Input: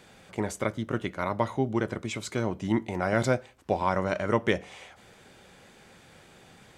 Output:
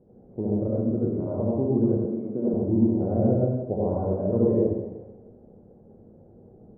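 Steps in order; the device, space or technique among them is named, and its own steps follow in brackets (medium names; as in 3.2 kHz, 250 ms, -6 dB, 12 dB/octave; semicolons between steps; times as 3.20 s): next room (low-pass 530 Hz 24 dB/octave; reverberation RT60 1.1 s, pre-delay 64 ms, DRR -6.5 dB); 2.05–2.54 s: high-pass 160 Hz 24 dB/octave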